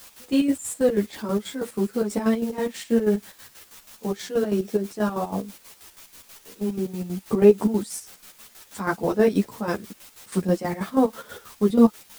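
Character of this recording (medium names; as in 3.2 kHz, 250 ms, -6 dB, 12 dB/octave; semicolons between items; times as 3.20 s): a quantiser's noise floor 8-bit, dither triangular; chopped level 6.2 Hz, depth 65%, duty 50%; a shimmering, thickened sound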